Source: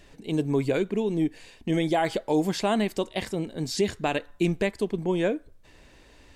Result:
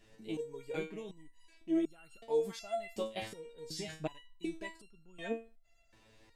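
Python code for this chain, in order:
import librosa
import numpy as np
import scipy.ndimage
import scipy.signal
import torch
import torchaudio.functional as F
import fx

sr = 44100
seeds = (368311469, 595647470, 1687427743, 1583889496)

y = fx.resonator_held(x, sr, hz=2.7, low_hz=110.0, high_hz=1400.0)
y = y * 10.0 ** (1.0 / 20.0)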